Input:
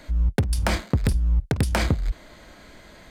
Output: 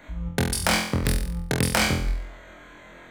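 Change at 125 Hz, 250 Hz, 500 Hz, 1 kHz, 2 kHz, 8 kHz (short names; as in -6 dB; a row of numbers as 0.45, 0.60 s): -4.0, +1.0, +1.5, +3.0, +5.5, +8.5 dB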